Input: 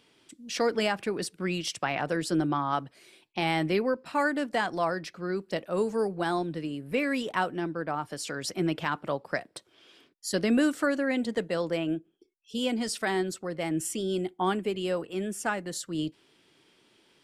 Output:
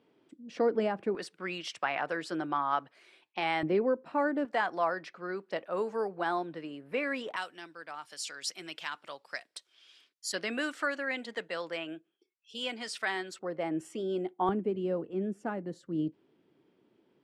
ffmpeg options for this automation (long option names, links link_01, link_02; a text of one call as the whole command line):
ffmpeg -i in.wav -af "asetnsamples=nb_out_samples=441:pad=0,asendcmd='1.15 bandpass f 1300;3.63 bandpass f 450;4.45 bandpass f 1100;7.36 bandpass f 4800;10.32 bandpass f 2000;13.39 bandpass f 680;14.49 bandpass f 260',bandpass=frequency=370:width_type=q:width=0.65:csg=0" out.wav